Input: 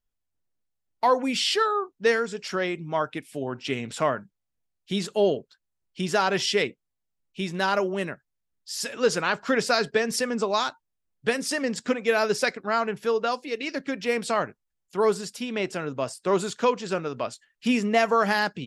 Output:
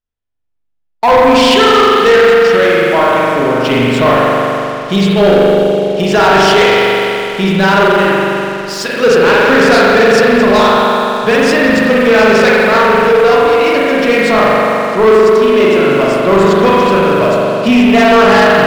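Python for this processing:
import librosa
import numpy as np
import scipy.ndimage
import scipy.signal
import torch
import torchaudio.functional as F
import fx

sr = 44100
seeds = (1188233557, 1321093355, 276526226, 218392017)

y = scipy.signal.sosfilt(scipy.signal.butter(2, 5300.0, 'lowpass', fs=sr, output='sos'), x)
y = fx.rev_spring(y, sr, rt60_s=2.9, pass_ms=(41,), chirp_ms=40, drr_db=-6.0)
y = fx.leveller(y, sr, passes=3)
y = y * librosa.db_to_amplitude(2.0)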